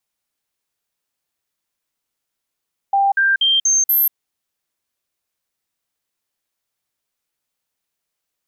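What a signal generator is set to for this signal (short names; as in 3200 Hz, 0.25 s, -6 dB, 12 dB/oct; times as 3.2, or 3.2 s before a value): stepped sine 792 Hz up, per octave 1, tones 5, 0.19 s, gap 0.05 s -12 dBFS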